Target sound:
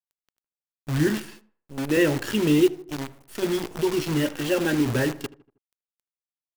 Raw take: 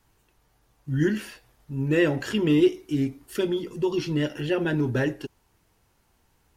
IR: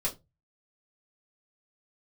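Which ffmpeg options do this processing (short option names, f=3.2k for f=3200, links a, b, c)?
-filter_complex "[0:a]asettb=1/sr,asplit=3[a][b][c];[a]atrim=end=1.074[d];[b]atrim=start=1.07:end=1.97,asetpts=PTS-STARTPTS,afade=t=in:d=0.004:c=qsin,afade=t=out:st=0.896:d=0.004:c=qsin,highpass=f=180:w=0.5412,highpass=f=180:w=1.3066[e];[c]atrim=start=1.966[f];[d][e]acrossfade=d=0.004:c1=hsin:c2=qsin[g];[g][f]acrossfade=d=0.004:c1=qsin:c2=hsin,asplit=3[h][i][j];[h]afade=t=out:st=2.66:d=0.02[k];[i]acompressor=threshold=-36dB:ratio=2.5,afade=t=in:st=2.66:d=0.02,afade=t=out:st=3.41:d=0.02[l];[j]afade=t=in:st=3.41:d=0.02[m];[k][l][m]amix=inputs=3:normalize=0,asettb=1/sr,asplit=3[n][o][p];[n]atrim=end=4.234[q];[o]atrim=start=4.23:end=4.86,asetpts=PTS-STARTPTS,afade=t=in:d=0.004:c=qsin,afade=t=out:st=0.626:d=0.004:c=qsin,aecho=1:1:3.7:0.49,atrim=end_sample=27783[r];[p]atrim=start=4.856[s];[q][r]acrossfade=d=0.004:c1=hsin:c2=qsin[t];[t][s]acrossfade=d=0.004:c1=qsin:c2=hsin,acrusher=bits=6:dc=4:mix=0:aa=0.000001,asplit=2[u][v];[v]adelay=79,lowpass=f=1.7k:p=1,volume=-18dB,asplit=2[w][x];[x]adelay=79,lowpass=f=1.7k:p=1,volume=0.5,asplit=2[y][z];[z]adelay=79,lowpass=f=1.7k:p=1,volume=0.5,asplit=2[aa][ab];[ab]adelay=79,lowpass=f=1.7k:p=1,volume=0.5[ac];[u][w][y][aa][ac]amix=inputs=5:normalize=0,volume=1dB"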